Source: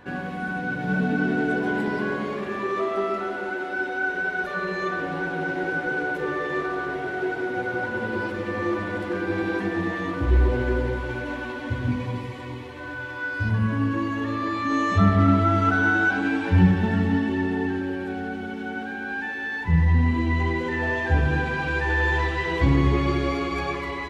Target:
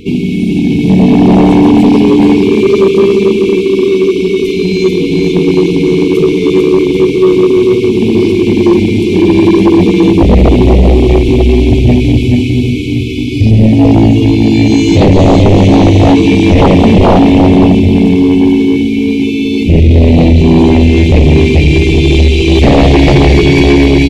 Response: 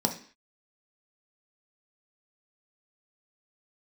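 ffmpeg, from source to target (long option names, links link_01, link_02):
-filter_complex "[0:a]asplit=3[link_01][link_02][link_03];[link_02]asetrate=22050,aresample=44100,atempo=2,volume=-15dB[link_04];[link_03]asetrate=52444,aresample=44100,atempo=0.840896,volume=-15dB[link_05];[link_01][link_04][link_05]amix=inputs=3:normalize=0,asplit=2[link_06][link_07];[1:a]atrim=start_sample=2205[link_08];[link_07][link_08]afir=irnorm=-1:irlink=0,volume=-27dB[link_09];[link_06][link_09]amix=inputs=2:normalize=0,afftfilt=real='re*(1-between(b*sr/4096,480,2100))':imag='im*(1-between(b*sr/4096,480,2100))':win_size=4096:overlap=0.75,aecho=1:1:440|792|1074|1299|1479:0.631|0.398|0.251|0.158|0.1,aeval=exprs='0.668*sin(PI/2*5.01*val(0)/0.668)':channel_layout=same,volume=2.5dB"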